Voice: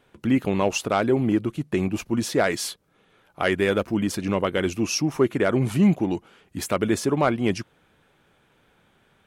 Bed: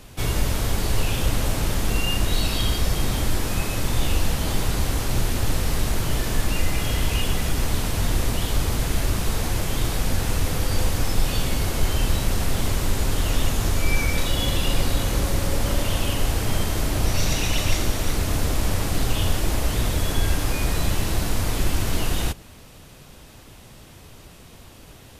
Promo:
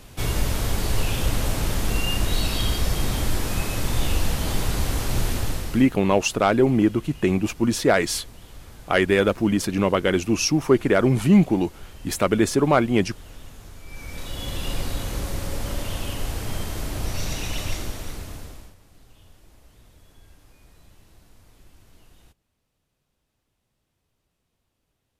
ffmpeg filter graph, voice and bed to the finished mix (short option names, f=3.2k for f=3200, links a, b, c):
-filter_complex "[0:a]adelay=5500,volume=3dB[a];[1:a]volume=14dB,afade=t=out:st=5.31:d=0.61:silence=0.1,afade=t=in:st=13.87:d=0.82:silence=0.177828,afade=t=out:st=17.63:d=1.12:silence=0.0595662[b];[a][b]amix=inputs=2:normalize=0"